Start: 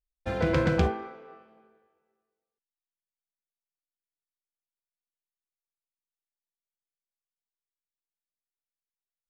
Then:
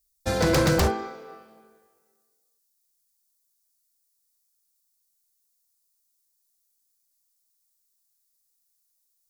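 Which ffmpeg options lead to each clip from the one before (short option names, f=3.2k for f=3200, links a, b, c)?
-af "aexciter=amount=5.4:drive=6.6:freq=4.1k,aeval=exprs='0.106*(abs(mod(val(0)/0.106+3,4)-2)-1)':c=same,volume=5dB"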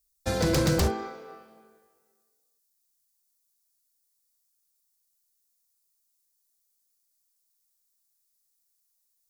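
-filter_complex "[0:a]acrossover=split=460|3000[a][b][c];[b]acompressor=threshold=-29dB:ratio=6[d];[a][d][c]amix=inputs=3:normalize=0,volume=-1.5dB"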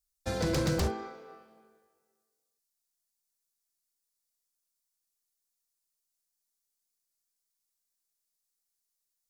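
-af "highshelf=f=11k:g=-7,volume=-5dB"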